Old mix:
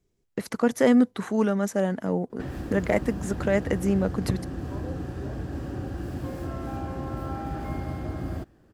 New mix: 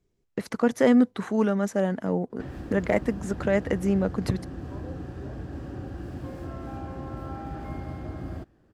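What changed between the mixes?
background -3.5 dB; master: add high shelf 7700 Hz -8.5 dB

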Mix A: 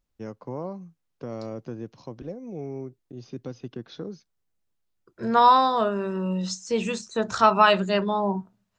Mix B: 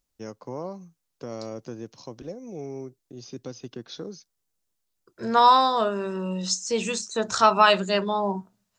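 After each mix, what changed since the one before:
first voice: remove air absorption 57 m; master: add tone controls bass -4 dB, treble +9 dB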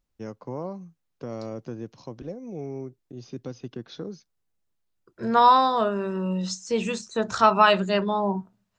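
master: add tone controls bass +4 dB, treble -9 dB

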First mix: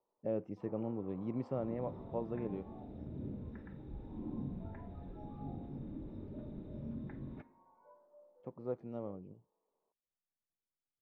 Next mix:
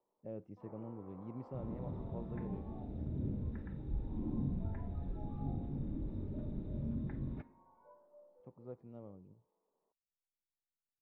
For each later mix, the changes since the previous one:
speech -11.0 dB; master: add low shelf 140 Hz +11 dB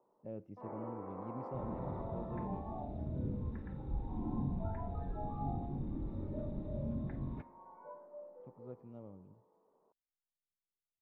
speech: send on; first sound +11.0 dB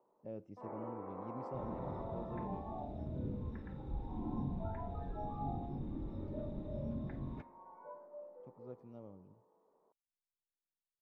master: add tone controls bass -3 dB, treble +11 dB

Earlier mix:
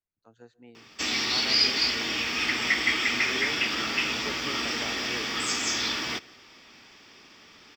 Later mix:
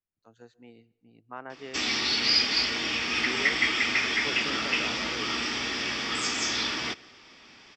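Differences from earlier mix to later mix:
first voice: add high shelf 5800 Hz +9 dB; background: entry +0.75 s; master: add LPF 7200 Hz 12 dB/oct

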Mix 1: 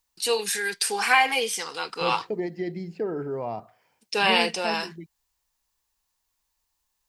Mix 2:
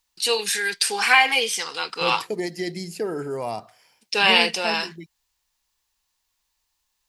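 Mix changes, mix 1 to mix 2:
first voice: add bell 3300 Hz +6 dB 2.3 oct; second voice: remove tape spacing loss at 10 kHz 38 dB

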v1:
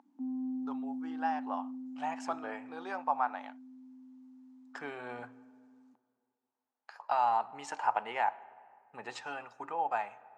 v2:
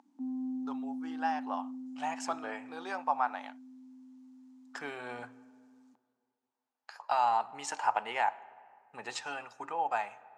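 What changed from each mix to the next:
master: add high shelf 3400 Hz +10.5 dB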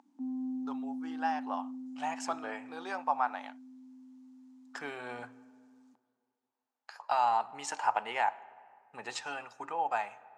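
none

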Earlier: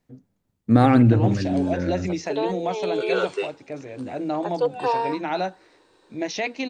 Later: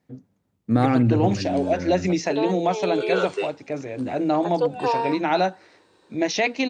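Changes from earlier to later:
first voice +5.0 dB; second voice -3.5 dB; master: add HPF 67 Hz

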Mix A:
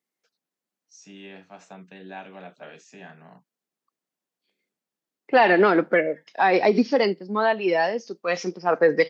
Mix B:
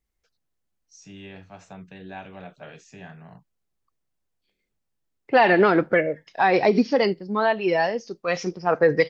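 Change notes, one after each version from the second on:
master: remove HPF 190 Hz 24 dB/oct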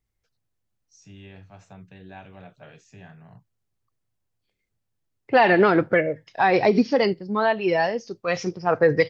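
first voice -5.0 dB; master: add bell 110 Hz +14 dB 0.42 oct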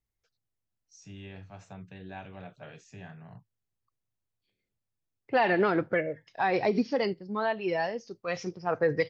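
second voice -8.0 dB

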